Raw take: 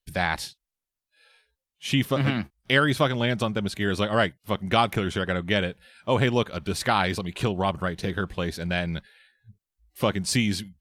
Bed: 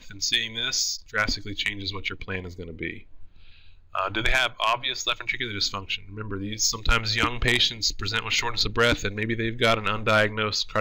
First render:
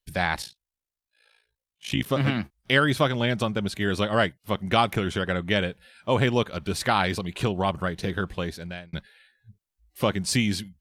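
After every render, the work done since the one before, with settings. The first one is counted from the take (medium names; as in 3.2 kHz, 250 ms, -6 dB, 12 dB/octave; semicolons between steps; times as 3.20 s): 0.42–2.06 s: AM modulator 56 Hz, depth 75%; 8.34–8.93 s: fade out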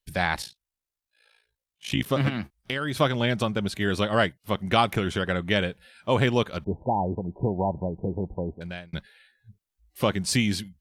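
2.28–2.97 s: compression 12:1, threshold -24 dBFS; 6.64–8.61 s: brick-wall FIR low-pass 1 kHz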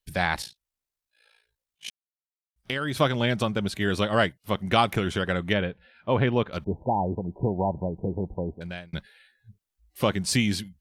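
1.90–2.56 s: mute; 5.53–6.53 s: distance through air 300 m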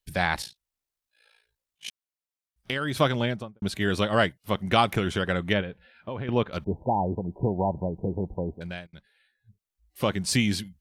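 3.12–3.62 s: studio fade out; 5.61–6.29 s: compression, threshold -30 dBFS; 8.87–10.40 s: fade in, from -18 dB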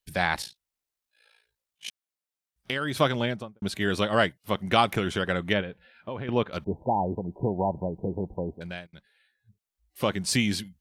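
bass shelf 100 Hz -7 dB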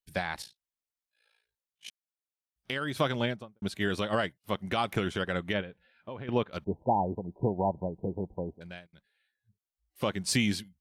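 peak limiter -15 dBFS, peak gain reduction 8.5 dB; upward expansion 1.5:1, over -40 dBFS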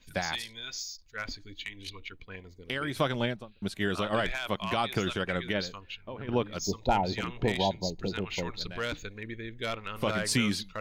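add bed -13 dB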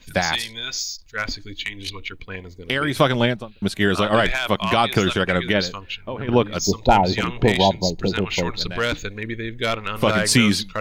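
trim +11 dB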